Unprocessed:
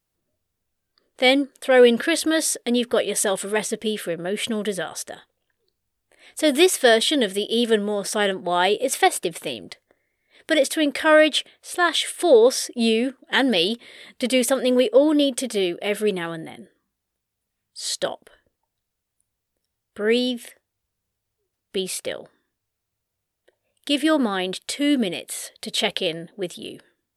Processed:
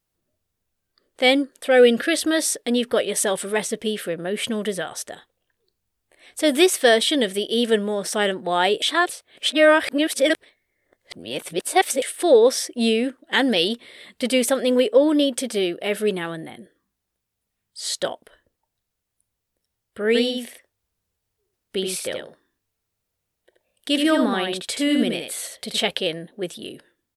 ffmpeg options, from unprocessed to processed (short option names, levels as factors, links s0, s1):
-filter_complex "[0:a]asettb=1/sr,asplit=3[s0][s1][s2];[s0]atrim=end=1.684[s3];[s1]atrim=start=1.68:end=2.23,asetpts=PTS-STARTPTS,afade=t=in:d=0.004:c=qsin,afade=t=out:st=0.546:d=0.004:c=qsin,asuperstop=centerf=980:order=4:qfactor=4.6[s4];[s2]atrim=start=2.226[s5];[s3][s4]acrossfade=d=0.004:c1=hsin:c2=qsin[s6];[s6][s5]acrossfade=d=0.004:c1=qsin:c2=hsin,asplit=3[s7][s8][s9];[s7]afade=t=out:st=20.14:d=0.02[s10];[s8]aecho=1:1:78:0.596,afade=t=in:st=20.14:d=0.02,afade=t=out:st=25.81:d=0.02[s11];[s9]afade=t=in:st=25.81:d=0.02[s12];[s10][s11][s12]amix=inputs=3:normalize=0,asplit=3[s13][s14][s15];[s13]atrim=end=8.822[s16];[s14]atrim=start=8.818:end=12.022,asetpts=PTS-STARTPTS,areverse[s17];[s15]atrim=start=12.018[s18];[s16][s17]acrossfade=d=0.004:c1=hsin:c2=hsin[s19];[s19][s18]acrossfade=d=0.004:c1=hsin:c2=hsin"